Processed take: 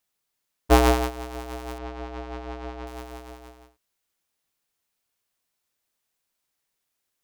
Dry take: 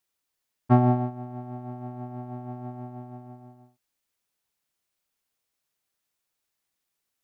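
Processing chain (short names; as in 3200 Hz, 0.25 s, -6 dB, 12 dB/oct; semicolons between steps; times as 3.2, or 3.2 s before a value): cycle switcher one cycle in 2, inverted; 1.78–2.87 air absorption 160 m; gain +2 dB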